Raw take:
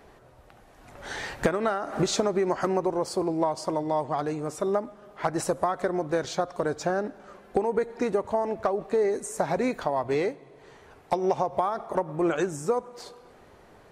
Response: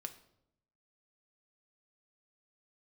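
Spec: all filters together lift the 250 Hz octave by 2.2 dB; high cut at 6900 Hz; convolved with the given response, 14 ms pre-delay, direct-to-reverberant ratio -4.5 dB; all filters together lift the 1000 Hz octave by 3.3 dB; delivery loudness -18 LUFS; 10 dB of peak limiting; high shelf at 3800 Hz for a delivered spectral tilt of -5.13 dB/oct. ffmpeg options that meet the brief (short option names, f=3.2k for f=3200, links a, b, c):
-filter_complex "[0:a]lowpass=6.9k,equalizer=f=250:t=o:g=3,equalizer=f=1k:t=o:g=4,highshelf=f=3.8k:g=3.5,alimiter=limit=-18.5dB:level=0:latency=1,asplit=2[a][b];[1:a]atrim=start_sample=2205,adelay=14[c];[b][c]afir=irnorm=-1:irlink=0,volume=7.5dB[d];[a][d]amix=inputs=2:normalize=0,volume=5.5dB"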